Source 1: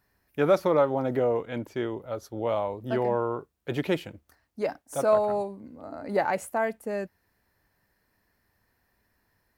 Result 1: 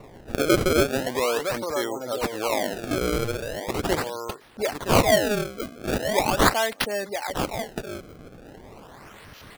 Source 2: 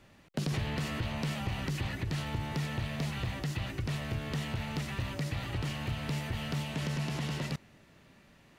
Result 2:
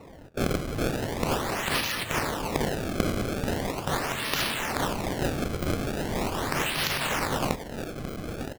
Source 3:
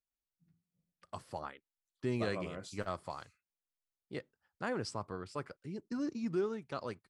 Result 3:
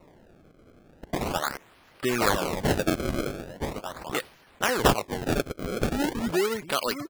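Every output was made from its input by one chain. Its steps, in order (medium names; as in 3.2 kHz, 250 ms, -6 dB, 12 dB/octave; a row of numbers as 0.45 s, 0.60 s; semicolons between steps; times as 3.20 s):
high-pass 52 Hz 6 dB/octave; RIAA curve recording; delay 967 ms -10 dB; spectral gate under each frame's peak -25 dB strong; treble shelf 4.2 kHz +11.5 dB; in parallel at +2.5 dB: compression, threshold -37 dBFS; on the sum: decimation with a swept rate 27×, swing 160% 0.4 Hz; tape noise reduction on one side only decoder only; peak normalisation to -6 dBFS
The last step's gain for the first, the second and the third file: +1.0 dB, 0.0 dB, +7.0 dB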